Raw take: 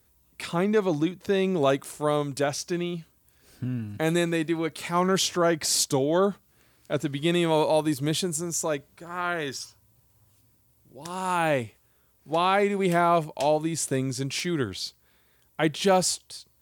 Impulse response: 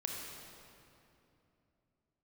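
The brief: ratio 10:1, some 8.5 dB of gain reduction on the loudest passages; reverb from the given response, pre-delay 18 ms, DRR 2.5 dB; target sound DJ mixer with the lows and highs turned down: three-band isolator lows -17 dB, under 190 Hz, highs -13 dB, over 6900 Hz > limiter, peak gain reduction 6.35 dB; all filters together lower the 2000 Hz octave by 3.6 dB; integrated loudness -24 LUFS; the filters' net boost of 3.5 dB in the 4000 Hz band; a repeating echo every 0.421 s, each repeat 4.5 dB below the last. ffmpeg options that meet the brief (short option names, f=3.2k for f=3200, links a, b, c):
-filter_complex "[0:a]equalizer=f=2k:t=o:g=-6.5,equalizer=f=4k:t=o:g=7,acompressor=threshold=-26dB:ratio=10,aecho=1:1:421|842|1263|1684|2105|2526|2947|3368|3789:0.596|0.357|0.214|0.129|0.0772|0.0463|0.0278|0.0167|0.01,asplit=2[a][b];[1:a]atrim=start_sample=2205,adelay=18[c];[b][c]afir=irnorm=-1:irlink=0,volume=-4dB[d];[a][d]amix=inputs=2:normalize=0,acrossover=split=190 6900:gain=0.141 1 0.224[e][f][g];[e][f][g]amix=inputs=3:normalize=0,volume=7.5dB,alimiter=limit=-14dB:level=0:latency=1"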